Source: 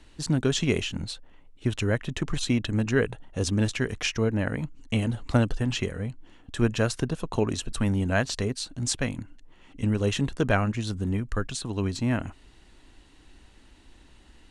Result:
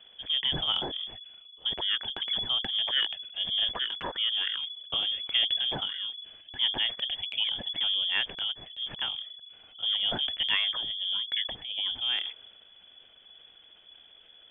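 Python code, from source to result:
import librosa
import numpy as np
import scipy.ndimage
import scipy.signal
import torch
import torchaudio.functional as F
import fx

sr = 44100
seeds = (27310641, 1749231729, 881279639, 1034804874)

y = fx.freq_invert(x, sr, carrier_hz=3400)
y = fx.transient(y, sr, attack_db=-2, sustain_db=5)
y = y * librosa.db_to_amplitude(-4.5)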